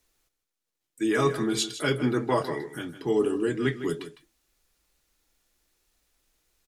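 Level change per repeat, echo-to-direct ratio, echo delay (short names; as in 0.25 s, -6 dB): no steady repeat, -12.5 dB, 0.156 s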